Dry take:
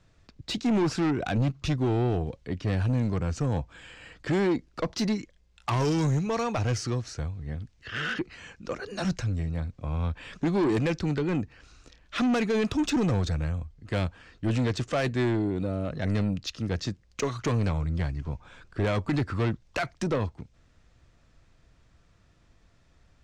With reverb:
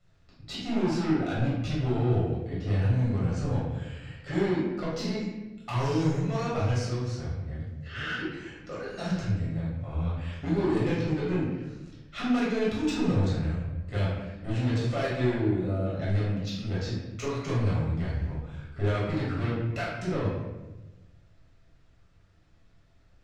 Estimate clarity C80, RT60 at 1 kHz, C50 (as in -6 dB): 3.5 dB, 0.95 s, 0.0 dB